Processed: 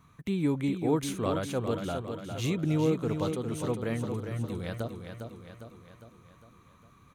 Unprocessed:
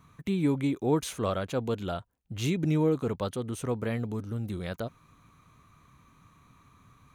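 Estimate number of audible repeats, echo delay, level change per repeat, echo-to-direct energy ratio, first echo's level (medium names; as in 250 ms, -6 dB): 6, 405 ms, -5.5 dB, -5.5 dB, -7.0 dB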